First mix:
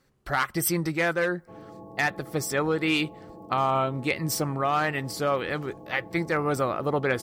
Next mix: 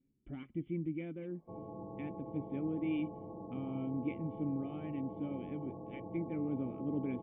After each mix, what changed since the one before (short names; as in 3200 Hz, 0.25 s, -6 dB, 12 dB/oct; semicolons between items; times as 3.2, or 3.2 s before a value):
speech: add vocal tract filter i; master: add tape spacing loss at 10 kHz 40 dB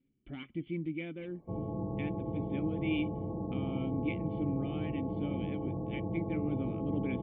background: add tilt -4.5 dB/oct; master: remove tape spacing loss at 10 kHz 40 dB